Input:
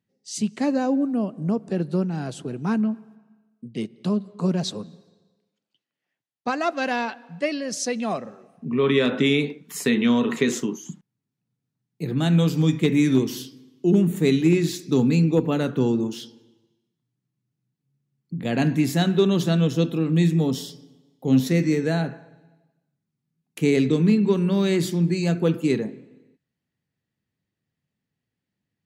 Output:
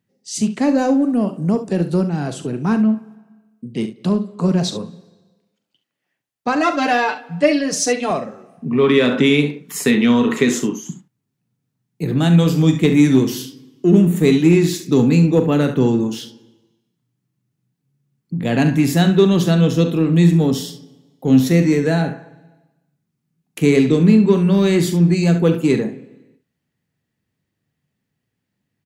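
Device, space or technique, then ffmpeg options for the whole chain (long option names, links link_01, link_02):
parallel distortion: -filter_complex "[0:a]equalizer=frequency=4100:width=1.5:gain=-2,asettb=1/sr,asplit=3[link_01][link_02][link_03];[link_01]atrim=end=0.784[link_04];[link_02]atrim=start=0.78:end=2.02,asetpts=PTS-STARTPTS,afade=type=in:duration=0.004:curve=qsin,afade=type=out:start_time=1.236:duration=0.004:curve=qsin,highshelf=frequency=5100:gain=8.5[link_05];[link_03]atrim=start=2.016[link_06];[link_04][link_05]acrossfade=duration=0.004:curve1=hsin:curve2=qsin[link_07];[link_07][link_06]acrossfade=duration=0.004:curve1=qsin:curve2=hsin,asettb=1/sr,asplit=3[link_08][link_09][link_10];[link_08]atrim=end=6.554[link_11];[link_09]atrim=start=6.55:end=8.11,asetpts=PTS-STARTPTS,afade=type=in:duration=0.004:curve=qsin,afade=type=out:start_time=1.556:duration=0.004:curve=qsin,aecho=1:1:6.7:0.96,atrim=end_sample=68796[link_12];[link_10]atrim=start=8.106[link_13];[link_11][link_12]acrossfade=duration=0.004:curve1=hsin:curve2=qsin[link_14];[link_14][link_13]acrossfade=duration=0.004:curve1=qsin:curve2=hsin,aecho=1:1:41|69:0.237|0.237,asplit=2[link_15][link_16];[link_16]asoftclip=type=hard:threshold=-24.5dB,volume=-14dB[link_17];[link_15][link_17]amix=inputs=2:normalize=0,volume=5dB"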